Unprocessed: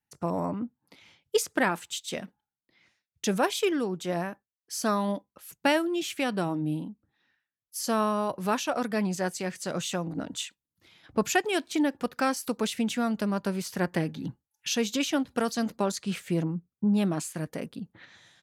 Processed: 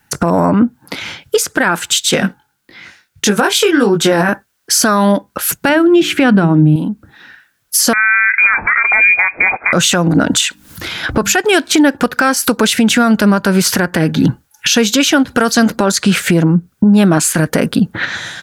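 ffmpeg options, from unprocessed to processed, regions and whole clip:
-filter_complex "[0:a]asettb=1/sr,asplit=3[s0][s1][s2];[s0]atrim=end=2.114[s3];[s1]atrim=start=2.11:end=4.29,asetpts=PTS-STARTPTS,afade=t=in:d=0.004:c=qsin,afade=t=out:st=2.176:d=0.004:c=qsin,bandreject=f=620:w=7.7,flanger=delay=19:depth=3.2:speed=1.6[s4];[s2]atrim=start=4.286[s5];[s3][s4]acrossfade=d=0.004:c1=hsin:c2=qsin[s6];[s6][s5]acrossfade=d=0.004:c1=qsin:c2=hsin,asettb=1/sr,asplit=3[s7][s8][s9];[s7]atrim=end=5.694[s10];[s8]atrim=start=5.69:end=6.76,asetpts=PTS-STARTPTS,afade=t=in:d=0.004:c=qsin,afade=t=out:st=1.066:d=0.004:c=qsin,highpass=140,bass=f=250:g=14,treble=f=4000:g=-11,bandreject=f=60:t=h:w=6,bandreject=f=120:t=h:w=6,bandreject=f=180:t=h:w=6,bandreject=f=240:t=h:w=6,bandreject=f=300:t=h:w=6,bandreject=f=360:t=h:w=6,bandreject=f=420:t=h:w=6[s11];[s9]atrim=start=6.756[s12];[s10][s11]acrossfade=d=0.004:c1=hsin:c2=qsin[s13];[s13][s12]acrossfade=d=0.004:c1=qsin:c2=hsin,asettb=1/sr,asplit=3[s14][s15][s16];[s14]atrim=end=7.934[s17];[s15]atrim=start=7.93:end=9.73,asetpts=PTS-STARTPTS,afade=t=in:d=0.004:c=qsin,afade=t=out:st=1.796:d=0.004:c=qsin,acompressor=threshold=0.0251:ratio=4:attack=3.2:release=140:knee=1:detection=peak,lowpass=f=2200:t=q:w=0.5098,lowpass=f=2200:t=q:w=0.6013,lowpass=f=2200:t=q:w=0.9,lowpass=f=2200:t=q:w=2.563,afreqshift=-2600[s18];[s16]atrim=start=9.726[s19];[s17][s18]acrossfade=d=0.004:c1=hsin:c2=qsin[s20];[s20][s19]acrossfade=d=0.004:c1=qsin:c2=hsin,asettb=1/sr,asplit=3[s21][s22][s23];[s21]atrim=end=10.414[s24];[s22]atrim=start=10.41:end=11.37,asetpts=PTS-STARTPTS,afade=t=in:d=0.004:c=qsin,afade=t=out:st=0.956:d=0.004:c=qsin,bandreject=f=50:t=h:w=6,bandreject=f=100:t=h:w=6,bandreject=f=150:t=h:w=6,bandreject=f=200:t=h:w=6,bandreject=f=250:t=h:w=6,bandreject=f=300:t=h:w=6,asubboost=boost=6:cutoff=89,acompressor=mode=upward:threshold=0.00501:ratio=2.5:attack=3.2:release=140:knee=2.83:detection=peak[s25];[s23]atrim=start=11.366[s26];[s24][s25]acrossfade=d=0.004:c1=hsin:c2=qsin[s27];[s27][s26]acrossfade=d=0.004:c1=qsin:c2=hsin,acompressor=threshold=0.0158:ratio=10,equalizer=f=1500:w=4.4:g=9,alimiter=level_in=35.5:limit=0.891:release=50:level=0:latency=1,volume=0.891"

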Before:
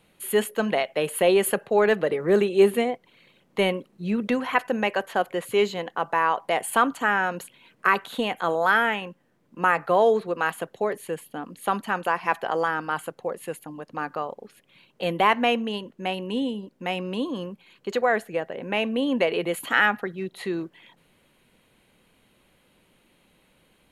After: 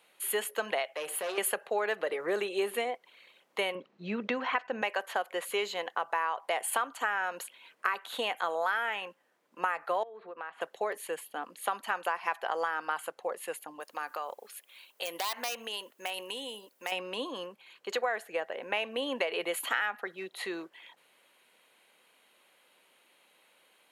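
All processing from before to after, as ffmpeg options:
-filter_complex "[0:a]asettb=1/sr,asplit=3[s0][s1][s2];[s0]atrim=end=0.904[s3];[s1]atrim=start=0.9:end=1.38,asetpts=PTS-STARTPTS,afade=t=in:d=0.004:c=qsin,afade=t=out:st=0.476:d=0.004:c=qsin,bandreject=f=63.6:t=h:w=4,bandreject=f=127.2:t=h:w=4,bandreject=f=190.8:t=h:w=4,bandreject=f=254.4:t=h:w=4,bandreject=f=318:t=h:w=4,bandreject=f=381.6:t=h:w=4,bandreject=f=445.2:t=h:w=4,bandreject=f=508.8:t=h:w=4,bandreject=f=572.4:t=h:w=4,bandreject=f=636:t=h:w=4,bandreject=f=699.6:t=h:w=4,bandreject=f=763.2:t=h:w=4,bandreject=f=826.8:t=h:w=4,bandreject=f=890.4:t=h:w=4,bandreject=f=954:t=h:w=4,bandreject=f=1017.6:t=h:w=4,bandreject=f=1081.2:t=h:w=4,bandreject=f=1144.8:t=h:w=4,bandreject=f=1208.4:t=h:w=4,bandreject=f=1272:t=h:w=4,bandreject=f=1335.6:t=h:w=4,bandreject=f=1399.2:t=h:w=4,bandreject=f=1462.8:t=h:w=4,bandreject=f=1526.4:t=h:w=4,bandreject=f=1590:t=h:w=4,bandreject=f=1653.6:t=h:w=4,bandreject=f=1717.2:t=h:w=4,bandreject=f=1780.8:t=h:w=4,bandreject=f=1844.4:t=h:w=4,bandreject=f=1908:t=h:w=4,bandreject=f=1971.6:t=h:w=4,bandreject=f=2035.2:t=h:w=4,bandreject=f=2098.8:t=h:w=4,bandreject=f=2162.4:t=h:w=4,bandreject=f=2226:t=h:w=4,bandreject=f=2289.6:t=h:w=4,bandreject=f=2353.2:t=h:w=4,aeval=exprs='(tanh(10*val(0)+0.3)-tanh(0.3))/10':c=same,acompressor=threshold=0.0251:ratio=2:attack=3.2:release=140:knee=1:detection=peak[s4];[s2]atrim=start=1.376[s5];[s3][s4]acrossfade=d=0.004:c1=hsin:c2=qsin[s6];[s6][s5]acrossfade=d=0.004:c1=qsin:c2=hsin,asettb=1/sr,asplit=3[s7][s8][s9];[s7]atrim=end=3.754[s10];[s8]atrim=start=3.75:end=4.82,asetpts=PTS-STARTPTS,afade=t=in:d=0.004:c=qsin,afade=t=out:st=1.066:d=0.004:c=qsin,lowpass=f=6200:w=0.5412,lowpass=f=6200:w=1.3066,bass=f=250:g=12,treble=f=4000:g=-6[s11];[s9]atrim=start=4.816[s12];[s10][s11]acrossfade=d=0.004:c1=hsin:c2=qsin[s13];[s13][s12]acrossfade=d=0.004:c1=qsin:c2=hsin,asettb=1/sr,asplit=3[s14][s15][s16];[s14]atrim=end=10.034[s17];[s15]atrim=start=10.03:end=10.61,asetpts=PTS-STARTPTS,afade=t=in:d=0.004:c=qsin,afade=t=out:st=0.576:d=0.004:c=qsin,lowpass=2100,acompressor=threshold=0.0158:ratio=5:attack=3.2:release=140:knee=1:detection=peak[s18];[s16]atrim=start=10.606[s19];[s17][s18]acrossfade=d=0.004:c1=hsin:c2=qsin[s20];[s20][s19]acrossfade=d=0.004:c1=qsin:c2=hsin,asettb=1/sr,asplit=3[s21][s22][s23];[s21]atrim=end=13.804[s24];[s22]atrim=start=13.8:end=16.92,asetpts=PTS-STARTPTS,afade=t=in:d=0.004:c=qsin,afade=t=out:st=3.116:d=0.004:c=qsin,aeval=exprs='0.178*(abs(mod(val(0)/0.178+3,4)-2)-1)':c=same,aemphasis=mode=production:type=bsi,acompressor=threshold=0.0355:ratio=5:attack=3.2:release=140:knee=1:detection=peak[s25];[s23]atrim=start=16.916[s26];[s24][s25]acrossfade=d=0.004:c1=hsin:c2=qsin[s27];[s27][s26]acrossfade=d=0.004:c1=qsin:c2=hsin,highpass=600,acompressor=threshold=0.0447:ratio=6"

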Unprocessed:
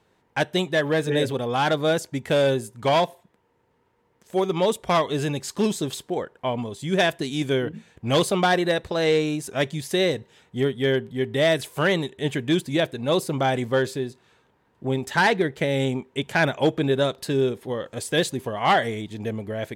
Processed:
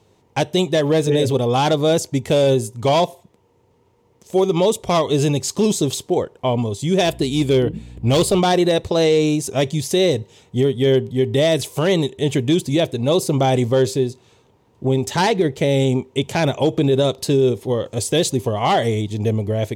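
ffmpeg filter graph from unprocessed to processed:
-filter_complex "[0:a]asettb=1/sr,asplit=3[s0][s1][s2];[s0]atrim=end=7.054[s3];[s1]atrim=start=7.05:end=8.4,asetpts=PTS-STARTPTS,afade=t=in:d=0.004:c=qsin,afade=t=out:st=1.346:d=0.004:c=qsin,equalizer=f=6100:t=o:w=0.2:g=-12.5,aeval=exprs='val(0)+0.00562*(sin(2*PI*60*n/s)+sin(2*PI*2*60*n/s)/2+sin(2*PI*3*60*n/s)/3+sin(2*PI*4*60*n/s)/4+sin(2*PI*5*60*n/s)/5)':c=same,volume=7.5,asoftclip=hard,volume=0.133[s4];[s2]atrim=start=8.396[s5];[s3][s4]acrossfade=d=0.004:c1=hsin:c2=qsin[s6];[s6][s5]acrossfade=d=0.004:c1=qsin:c2=hsin,equalizer=f=100:t=o:w=0.67:g=8,equalizer=f=400:t=o:w=0.67:g=3,equalizer=f=1600:t=o:w=0.67:g=-11,equalizer=f=6300:t=o:w=0.67:g=5,alimiter=level_in=5.01:limit=0.891:release=50:level=0:latency=1,volume=0.422"

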